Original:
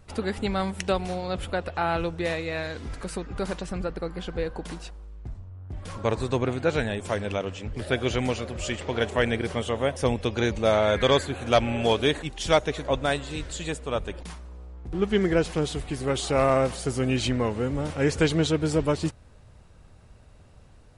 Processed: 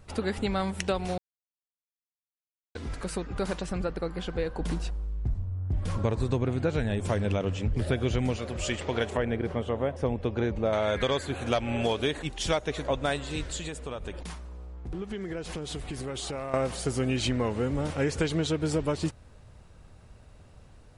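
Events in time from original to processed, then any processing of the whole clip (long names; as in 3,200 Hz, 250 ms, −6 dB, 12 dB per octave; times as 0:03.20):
0:01.18–0:02.75: silence
0:04.60–0:08.37: low-shelf EQ 300 Hz +10 dB
0:09.17–0:10.73: low-pass filter 1,000 Hz 6 dB per octave
0:13.59–0:16.54: downward compressor 10 to 1, threshold −31 dBFS
whole clip: downward compressor, threshold −23 dBFS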